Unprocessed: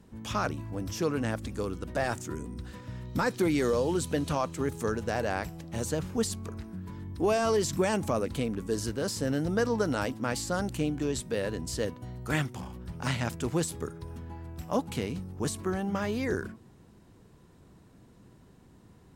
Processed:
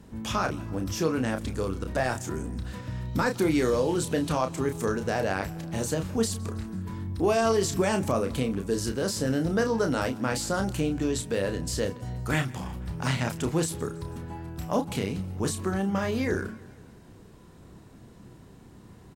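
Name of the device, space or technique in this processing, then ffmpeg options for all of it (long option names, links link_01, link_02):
parallel compression: -filter_complex "[0:a]asplit=2[link_01][link_02];[link_02]adelay=31,volume=-7dB[link_03];[link_01][link_03]amix=inputs=2:normalize=0,aecho=1:1:163|326|489|652:0.0631|0.0347|0.0191|0.0105,asplit=2[link_04][link_05];[link_05]acompressor=threshold=-37dB:ratio=6,volume=-1dB[link_06];[link_04][link_06]amix=inputs=2:normalize=0"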